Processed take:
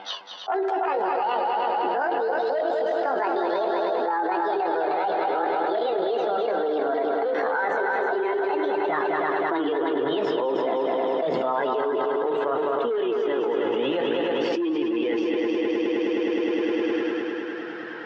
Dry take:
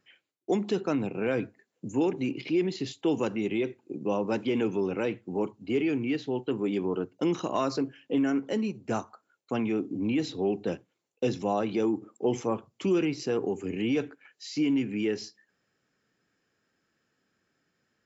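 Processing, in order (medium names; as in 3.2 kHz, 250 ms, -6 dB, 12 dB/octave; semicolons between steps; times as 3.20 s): pitch bend over the whole clip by +11.5 st ending unshifted; flange 0.79 Hz, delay 1.3 ms, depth 1.8 ms, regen +19%; overload inside the chain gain 22.5 dB; cabinet simulation 350–2900 Hz, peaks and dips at 600 Hz -6 dB, 860 Hz +6 dB, 1.6 kHz +3 dB, 2.4 kHz -7 dB; on a send: multi-head delay 104 ms, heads second and third, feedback 64%, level -8 dB; on the sum: level flattener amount 100%; trim +1.5 dB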